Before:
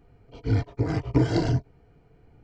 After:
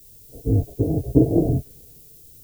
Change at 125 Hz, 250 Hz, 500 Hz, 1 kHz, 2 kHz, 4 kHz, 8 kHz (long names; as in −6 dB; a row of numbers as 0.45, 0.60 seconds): +3.0 dB, +6.5 dB, +6.0 dB, −4.5 dB, below −25 dB, below −15 dB, can't be measured